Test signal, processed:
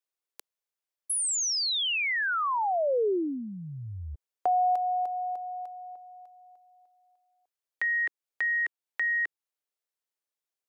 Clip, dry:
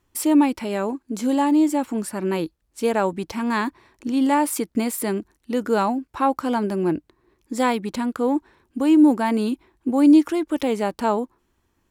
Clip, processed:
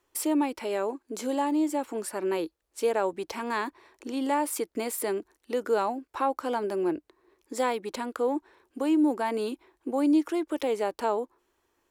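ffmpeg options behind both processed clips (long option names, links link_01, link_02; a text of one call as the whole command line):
ffmpeg -i in.wav -filter_complex "[0:a]acrossover=split=250[link_01][link_02];[link_02]acompressor=threshold=-33dB:ratio=1.5[link_03];[link_01][link_03]amix=inputs=2:normalize=0,lowshelf=frequency=280:width_type=q:width=1.5:gain=-12,volume=-1.5dB" out.wav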